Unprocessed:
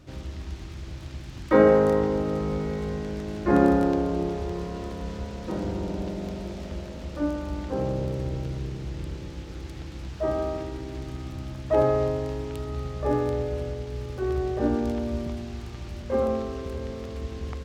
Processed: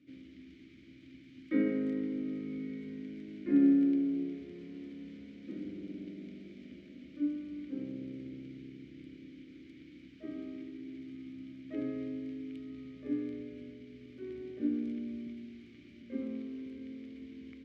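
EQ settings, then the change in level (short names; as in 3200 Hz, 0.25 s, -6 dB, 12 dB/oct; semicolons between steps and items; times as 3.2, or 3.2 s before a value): vowel filter i; HPF 77 Hz; bell 3200 Hz -4.5 dB 0.23 oct; 0.0 dB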